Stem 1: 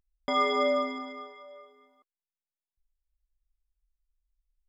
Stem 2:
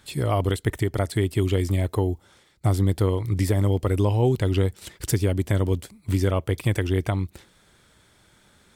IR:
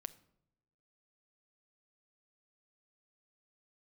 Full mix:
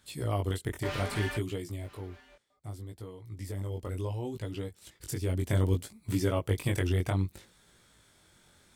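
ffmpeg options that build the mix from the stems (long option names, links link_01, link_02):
-filter_complex "[0:a]equalizer=frequency=590:width=0.74:gain=11.5,aeval=exprs='0.112*(abs(mod(val(0)/0.112+3,4)-2)-1)':channel_layout=same,adelay=550,volume=-10dB,asplit=3[link_01][link_02][link_03];[link_01]atrim=end=1.37,asetpts=PTS-STARTPTS,afade=type=out:start_time=1.366:duration=0.004:curve=hsin[link_04];[link_02]atrim=start=1.37:end=2.5,asetpts=PTS-STARTPTS,volume=0[link_05];[link_03]atrim=start=2.5,asetpts=PTS-STARTPTS,afade=type=in:duration=0.004:curve=hsin[link_06];[link_04][link_05][link_06]concat=n=3:v=0:a=1,asplit=2[link_07][link_08];[link_08]volume=-20dB[link_09];[1:a]bass=frequency=250:gain=0,treble=frequency=4000:gain=4,volume=9.5dB,afade=type=out:start_time=1.28:duration=0.78:silence=0.251189,afade=type=in:start_time=3.23:duration=0.62:silence=0.421697,afade=type=in:start_time=5.1:duration=0.4:silence=0.375837[link_10];[link_09]aecho=0:1:987:1[link_11];[link_07][link_10][link_11]amix=inputs=3:normalize=0,flanger=delay=17:depth=5.7:speed=0.65"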